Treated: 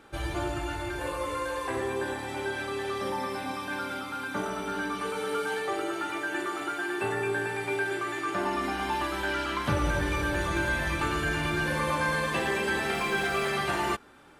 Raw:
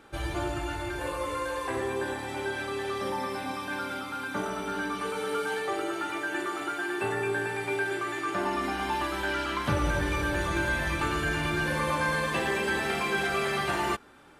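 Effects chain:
0:12.93–0:13.49: background noise pink −51 dBFS

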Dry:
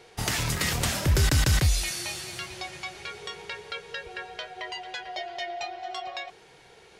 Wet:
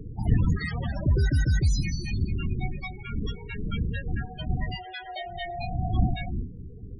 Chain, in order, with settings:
wind on the microphone 130 Hz −29 dBFS
spectral peaks only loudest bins 16

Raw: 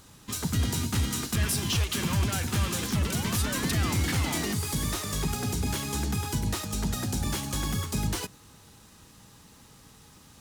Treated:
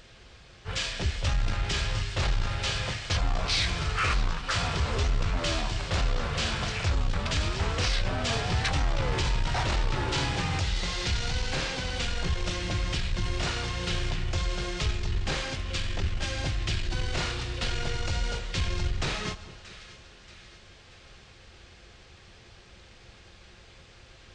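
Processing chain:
wrong playback speed 78 rpm record played at 33 rpm
echo with a time of its own for lows and highs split 1,300 Hz, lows 216 ms, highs 631 ms, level −15.5 dB
saturating transformer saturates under 68 Hz
level +1.5 dB

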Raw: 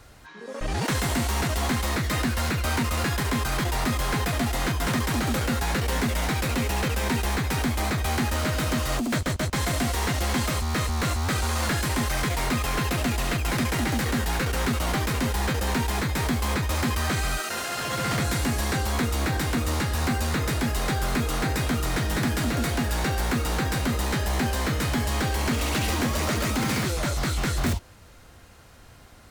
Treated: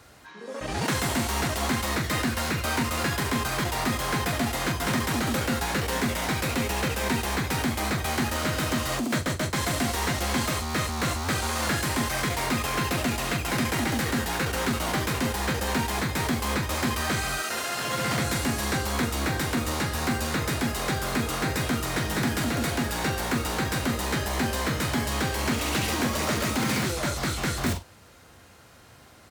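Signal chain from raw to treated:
high-pass filter 61 Hz
low-shelf EQ 84 Hz −7.5 dB
double-tracking delay 44 ms −10.5 dB

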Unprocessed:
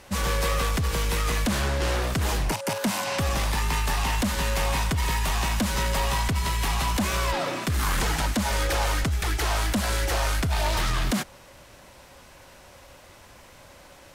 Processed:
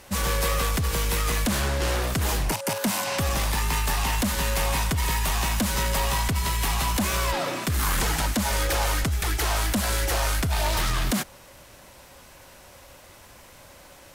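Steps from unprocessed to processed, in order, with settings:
high-shelf EQ 9,900 Hz +9 dB

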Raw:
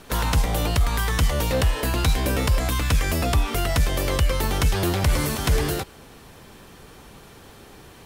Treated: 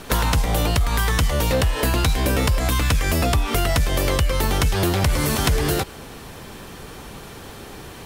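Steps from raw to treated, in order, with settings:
downward compressor, threshold −24 dBFS, peak gain reduction 8.5 dB
level +8 dB

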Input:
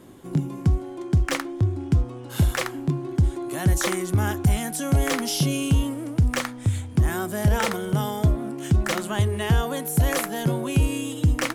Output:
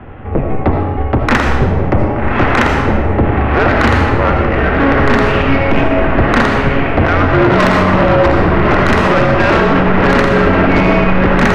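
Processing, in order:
0:03.86–0:05.50: downward compressor 4 to 1, threshold −23 dBFS, peak gain reduction 7.5 dB
0:07.59–0:08.73: thrown reverb, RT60 1.4 s, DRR 3.5 dB
harmonic generator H 6 −11 dB, 8 −22 dB, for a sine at −10.5 dBFS
single-sideband voice off tune −280 Hz 360–2,600 Hz
feedback delay with all-pass diffusion 1,186 ms, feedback 55%, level −5 dB
soft clipping −25 dBFS, distortion −11 dB
comb and all-pass reverb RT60 1.1 s, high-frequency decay 0.9×, pre-delay 40 ms, DRR 2 dB
boost into a limiter +21.5 dB
level −1 dB

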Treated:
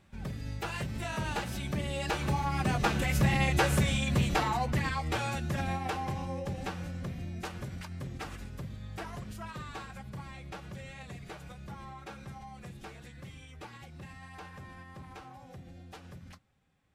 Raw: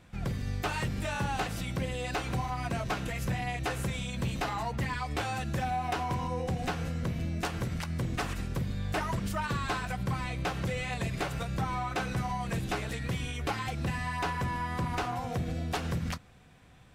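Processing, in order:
source passing by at 0:03.57, 8 m/s, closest 7 metres
phase-vocoder pitch shift with formants kept +1.5 semitones
level +7 dB

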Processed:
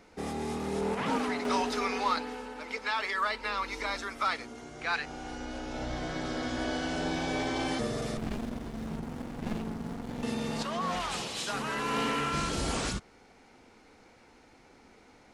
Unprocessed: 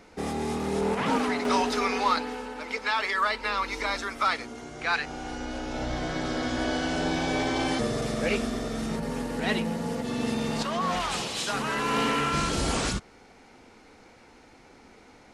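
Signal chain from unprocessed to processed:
0:08.17–0:10.23: windowed peak hold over 65 samples
level −4.5 dB

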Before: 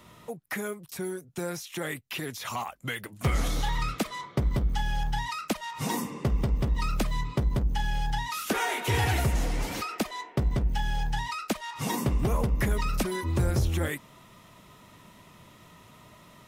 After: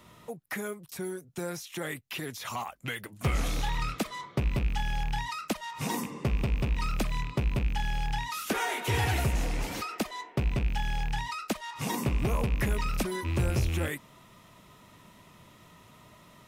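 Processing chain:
loose part that buzzes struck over −31 dBFS, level −27 dBFS
level −2 dB

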